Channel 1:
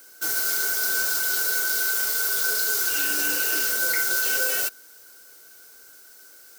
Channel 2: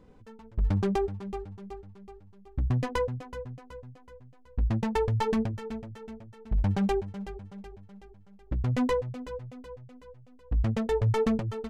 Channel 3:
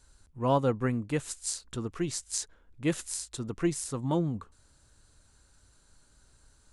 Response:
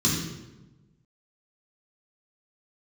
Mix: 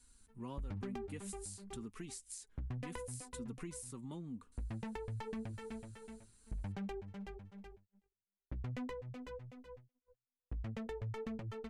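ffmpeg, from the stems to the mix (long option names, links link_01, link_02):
-filter_complex "[1:a]agate=range=-40dB:threshold=-45dB:ratio=16:detection=peak,volume=-9.5dB[link_01];[2:a]equalizer=frequency=250:width_type=o:width=0.67:gain=6,equalizer=frequency=630:width_type=o:width=0.67:gain=-9,equalizer=frequency=1600:width_type=o:width=0.67:gain=-4,equalizer=frequency=10000:width_type=o:width=0.67:gain=11,acompressor=threshold=-37dB:ratio=2.5,flanger=delay=4.1:depth=1.2:regen=41:speed=0.9:shape=sinusoidal,volume=-4dB[link_02];[link_01][link_02]amix=inputs=2:normalize=0,acompressor=threshold=-39dB:ratio=6,volume=0dB,equalizer=frequency=2200:width=1.2:gain=5,acrossover=split=370[link_03][link_04];[link_04]acompressor=threshold=-46dB:ratio=3[link_05];[link_03][link_05]amix=inputs=2:normalize=0"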